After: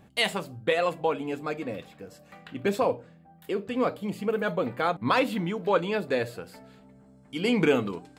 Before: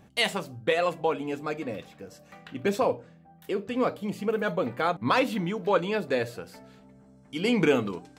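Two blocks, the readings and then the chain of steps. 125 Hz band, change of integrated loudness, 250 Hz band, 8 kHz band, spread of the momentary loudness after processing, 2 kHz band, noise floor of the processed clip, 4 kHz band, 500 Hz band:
0.0 dB, 0.0 dB, 0.0 dB, -1.0 dB, 15 LU, 0.0 dB, -55 dBFS, 0.0 dB, 0.0 dB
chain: bell 5900 Hz -7.5 dB 0.21 oct

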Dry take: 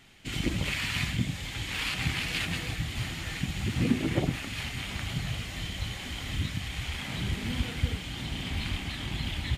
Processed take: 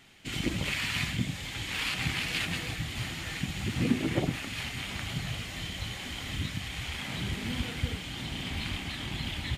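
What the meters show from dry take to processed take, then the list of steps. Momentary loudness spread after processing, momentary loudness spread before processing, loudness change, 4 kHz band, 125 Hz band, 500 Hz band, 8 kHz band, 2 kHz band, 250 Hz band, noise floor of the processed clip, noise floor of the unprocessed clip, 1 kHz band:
6 LU, 6 LU, -1.0 dB, 0.0 dB, -2.5 dB, -0.5 dB, 0.0 dB, 0.0 dB, -1.0 dB, -40 dBFS, -39 dBFS, 0.0 dB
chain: low shelf 82 Hz -7.5 dB

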